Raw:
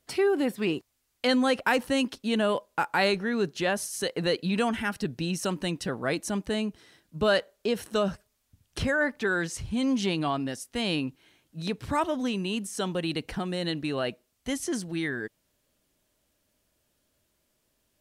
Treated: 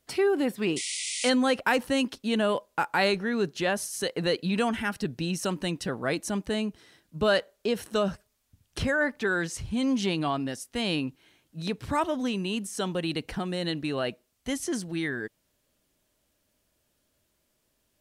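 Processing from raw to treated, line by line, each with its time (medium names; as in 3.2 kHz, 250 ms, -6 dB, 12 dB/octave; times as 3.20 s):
0.76–1.30 s: painted sound noise 1.9–10 kHz -33 dBFS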